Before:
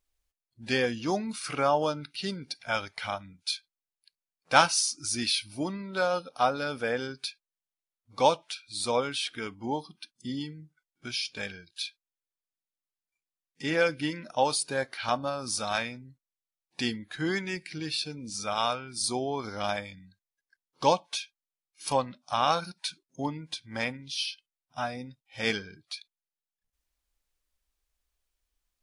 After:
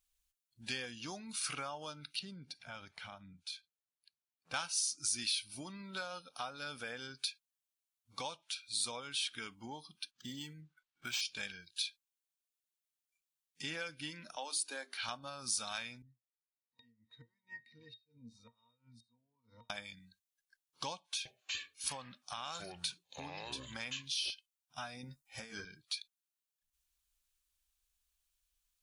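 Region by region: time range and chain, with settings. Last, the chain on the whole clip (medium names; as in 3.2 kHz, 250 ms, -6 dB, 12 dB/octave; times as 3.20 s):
2.19–4.54 s: high-pass 100 Hz + tilt EQ -3 dB/octave + compression 2:1, threshold -46 dBFS
10.11–11.21 s: peaking EQ 1.2 kHz +6.5 dB 2.4 oct + decimation joined by straight lines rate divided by 4×
14.36–15.02 s: elliptic high-pass 260 Hz, stop band 50 dB + hum notches 50/100/150/200/250/300/350/400 Hz
16.02–19.70 s: inverted gate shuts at -22 dBFS, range -27 dB + pitch-class resonator A#, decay 0.13 s
20.96–24.30 s: ever faster or slower copies 292 ms, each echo -6 st, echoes 3, each echo -6 dB + compression 2:1, threshold -31 dBFS
25.03–25.65 s: peaking EQ 3.2 kHz -13.5 dB 0.93 oct + doubling 13 ms -6 dB + compressor with a negative ratio -39 dBFS
whole clip: graphic EQ with 31 bands 100 Hz -7 dB, 2 kHz -5 dB, 5 kHz -3 dB; compression 3:1, threshold -36 dBFS; amplifier tone stack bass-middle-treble 5-5-5; trim +9 dB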